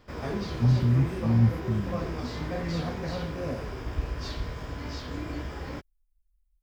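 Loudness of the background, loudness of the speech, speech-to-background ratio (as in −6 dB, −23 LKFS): −34.5 LKFS, −25.5 LKFS, 9.0 dB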